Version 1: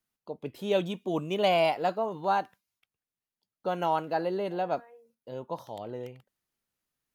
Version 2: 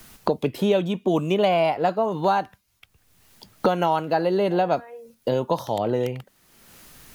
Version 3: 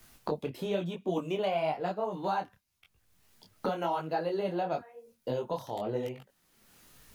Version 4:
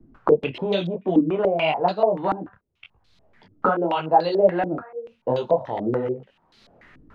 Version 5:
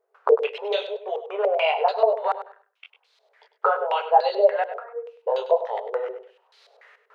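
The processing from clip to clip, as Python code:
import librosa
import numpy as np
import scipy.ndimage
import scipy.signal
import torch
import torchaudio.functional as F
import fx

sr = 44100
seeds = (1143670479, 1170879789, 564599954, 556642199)

y1 = fx.low_shelf(x, sr, hz=85.0, db=11.5)
y1 = fx.band_squash(y1, sr, depth_pct=100)
y1 = F.gain(torch.from_numpy(y1), 7.0).numpy()
y2 = fx.detune_double(y1, sr, cents=34)
y2 = F.gain(torch.from_numpy(y2), -6.5).numpy()
y3 = fx.filter_held_lowpass(y2, sr, hz=6.9, low_hz=300.0, high_hz=4100.0)
y3 = F.gain(torch.from_numpy(y3), 7.5).numpy()
y4 = fx.brickwall_highpass(y3, sr, low_hz=400.0)
y4 = fx.echo_feedback(y4, sr, ms=100, feedback_pct=21, wet_db=-12)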